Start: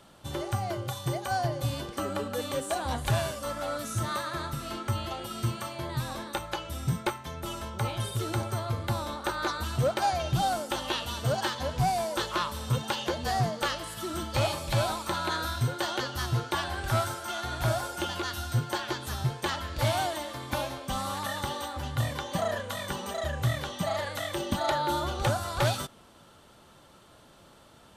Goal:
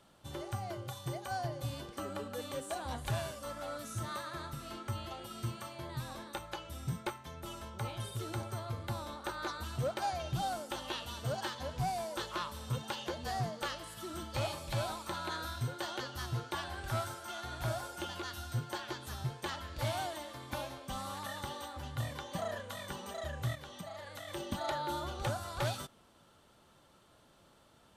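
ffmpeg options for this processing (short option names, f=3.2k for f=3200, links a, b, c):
-filter_complex "[0:a]asplit=3[a][b][c];[a]afade=t=out:st=23.54:d=0.02[d];[b]acompressor=threshold=-35dB:ratio=4,afade=t=in:st=23.54:d=0.02,afade=t=out:st=24.27:d=0.02[e];[c]afade=t=in:st=24.27:d=0.02[f];[d][e][f]amix=inputs=3:normalize=0,volume=-8.5dB"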